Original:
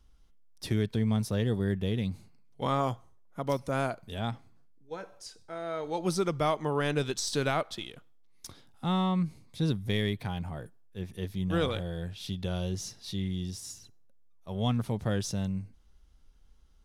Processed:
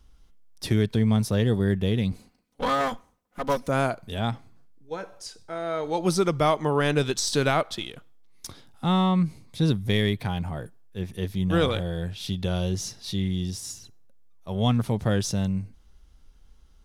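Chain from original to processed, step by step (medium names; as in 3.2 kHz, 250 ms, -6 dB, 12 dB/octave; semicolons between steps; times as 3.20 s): 2.12–3.68 s: comb filter that takes the minimum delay 4 ms; trim +6 dB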